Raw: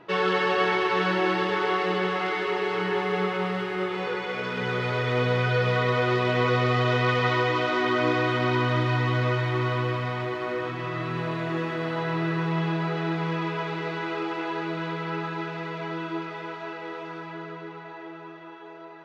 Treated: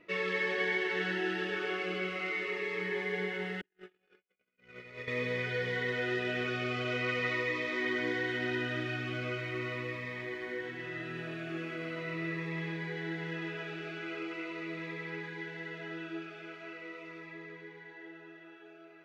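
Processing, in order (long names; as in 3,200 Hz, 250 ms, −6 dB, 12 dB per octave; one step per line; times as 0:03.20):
0:03.61–0:05.08: noise gate −24 dBFS, range −59 dB
octave-band graphic EQ 125/1,000/2,000/4,000 Hz −10/−12/+9/−5 dB
phaser whose notches keep moving one way falling 0.41 Hz
level −6 dB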